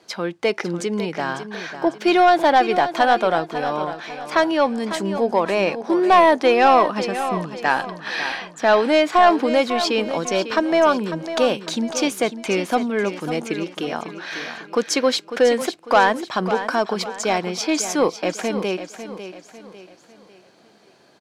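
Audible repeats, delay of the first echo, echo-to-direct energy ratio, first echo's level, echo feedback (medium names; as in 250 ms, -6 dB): 4, 549 ms, -10.0 dB, -11.0 dB, 40%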